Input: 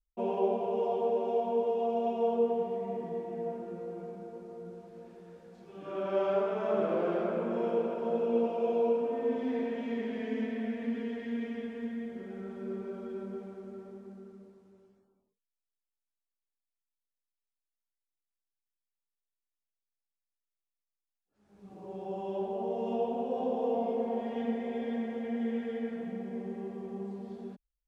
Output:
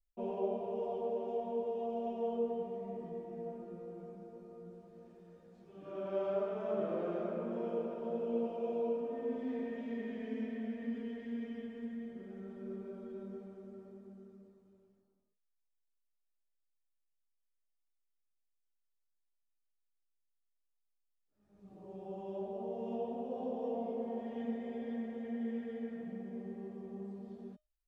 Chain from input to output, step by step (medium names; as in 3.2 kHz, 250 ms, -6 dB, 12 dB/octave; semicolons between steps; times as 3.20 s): bass shelf 470 Hz +7.5 dB; feedback comb 610 Hz, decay 0.23 s, harmonics all, mix 80%; trim +2 dB